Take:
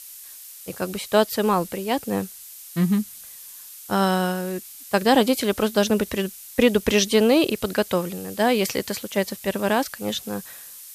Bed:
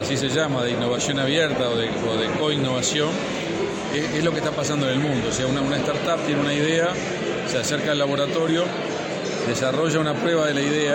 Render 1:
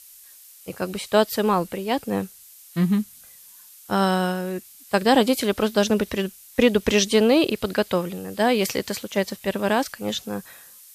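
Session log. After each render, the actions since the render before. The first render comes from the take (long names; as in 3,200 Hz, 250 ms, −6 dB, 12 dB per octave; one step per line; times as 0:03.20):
noise reduction from a noise print 6 dB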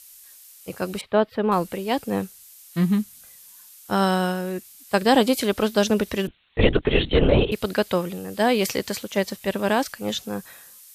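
0:01.01–0:01.52: high-frequency loss of the air 450 metres
0:06.27–0:07.52: linear-prediction vocoder at 8 kHz whisper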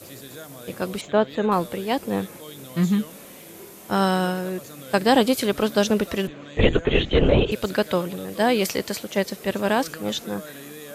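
mix in bed −19 dB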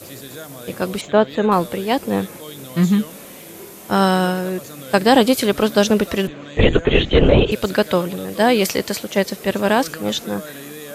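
level +5 dB
brickwall limiter −1 dBFS, peak gain reduction 2.5 dB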